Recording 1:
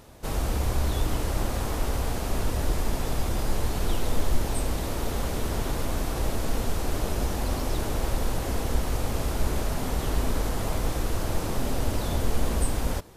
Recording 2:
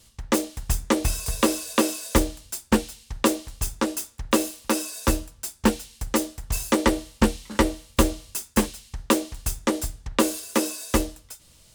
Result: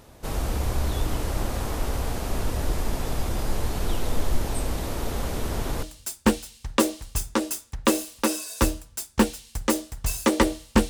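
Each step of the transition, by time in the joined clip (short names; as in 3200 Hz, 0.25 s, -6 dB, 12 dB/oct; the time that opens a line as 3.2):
recording 1
5.83 switch to recording 2 from 2.29 s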